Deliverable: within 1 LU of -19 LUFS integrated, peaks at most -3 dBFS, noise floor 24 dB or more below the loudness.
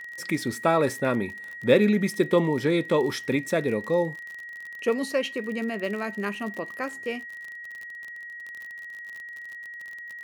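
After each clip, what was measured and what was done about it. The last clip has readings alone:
ticks 41/s; steady tone 1900 Hz; tone level -37 dBFS; loudness -26.0 LUFS; peak -5.5 dBFS; loudness target -19.0 LUFS
-> de-click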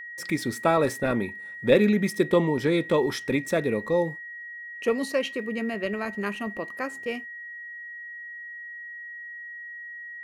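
ticks 1.6/s; steady tone 1900 Hz; tone level -37 dBFS
-> notch 1900 Hz, Q 30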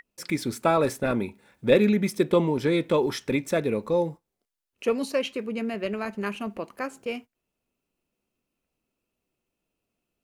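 steady tone none; loudness -26.0 LUFS; peak -6.0 dBFS; loudness target -19.0 LUFS
-> gain +7 dB; limiter -3 dBFS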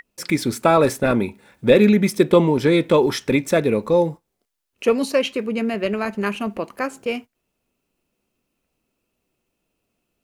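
loudness -19.5 LUFS; peak -3.0 dBFS; noise floor -77 dBFS

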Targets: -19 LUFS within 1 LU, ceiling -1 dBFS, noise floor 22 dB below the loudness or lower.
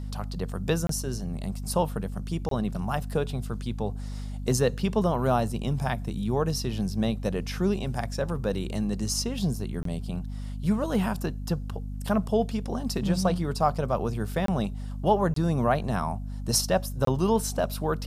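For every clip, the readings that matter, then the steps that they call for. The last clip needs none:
dropouts 6; longest dropout 23 ms; hum 50 Hz; harmonics up to 250 Hz; hum level -32 dBFS; loudness -28.0 LUFS; peak -9.5 dBFS; loudness target -19.0 LUFS
-> interpolate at 0.87/2.49/9.83/14.46/15.34/17.05, 23 ms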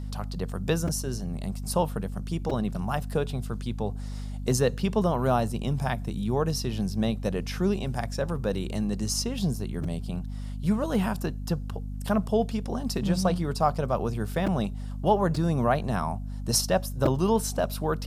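dropouts 0; hum 50 Hz; harmonics up to 250 Hz; hum level -32 dBFS
-> de-hum 50 Hz, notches 5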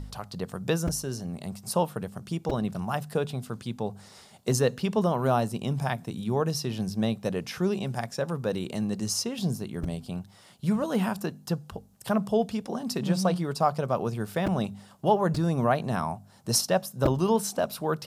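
hum none; loudness -28.5 LUFS; peak -9.0 dBFS; loudness target -19.0 LUFS
-> gain +9.5 dB; limiter -1 dBFS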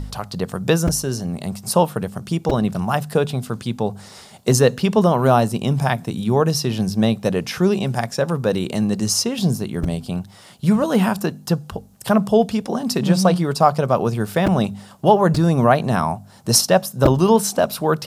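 loudness -19.5 LUFS; peak -1.0 dBFS; noise floor -44 dBFS

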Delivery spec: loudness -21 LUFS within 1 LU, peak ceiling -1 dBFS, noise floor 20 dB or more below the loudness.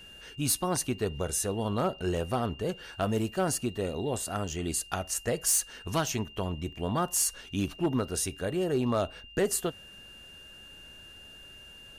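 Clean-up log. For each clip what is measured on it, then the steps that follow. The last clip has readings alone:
clipped 0.2%; flat tops at -19.5 dBFS; steady tone 2800 Hz; tone level -48 dBFS; loudness -30.5 LUFS; peak -19.5 dBFS; loudness target -21.0 LUFS
-> clip repair -19.5 dBFS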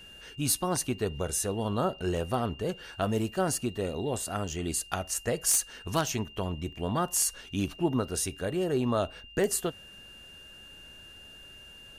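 clipped 0.0%; steady tone 2800 Hz; tone level -48 dBFS
-> notch 2800 Hz, Q 30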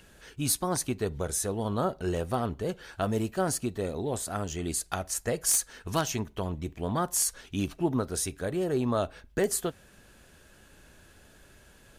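steady tone none; loudness -30.0 LUFS; peak -10.5 dBFS; loudness target -21.0 LUFS
-> gain +9 dB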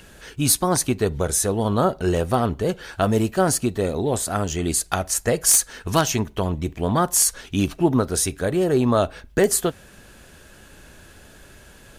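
loudness -21.0 LUFS; peak -1.5 dBFS; noise floor -48 dBFS

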